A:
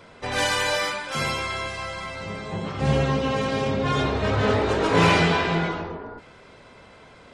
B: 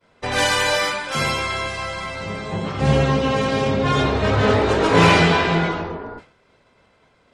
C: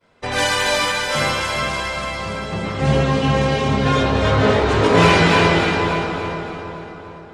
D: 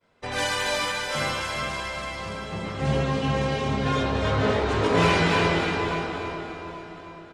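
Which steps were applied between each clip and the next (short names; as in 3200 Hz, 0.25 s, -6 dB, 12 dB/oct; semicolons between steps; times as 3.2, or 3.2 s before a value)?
expander -38 dBFS; gain +4.5 dB
split-band echo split 1500 Hz, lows 0.411 s, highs 0.287 s, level -4 dB
feedback echo 0.825 s, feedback 37%, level -19 dB; gain -7.5 dB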